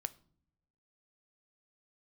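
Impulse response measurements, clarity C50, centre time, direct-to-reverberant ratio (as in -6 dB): 20.5 dB, 2 ms, 13.0 dB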